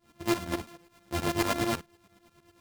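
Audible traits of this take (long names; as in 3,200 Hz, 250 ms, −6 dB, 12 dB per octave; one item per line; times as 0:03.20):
a buzz of ramps at a fixed pitch in blocks of 128 samples
tremolo saw up 9.2 Hz, depth 90%
a shimmering, thickened sound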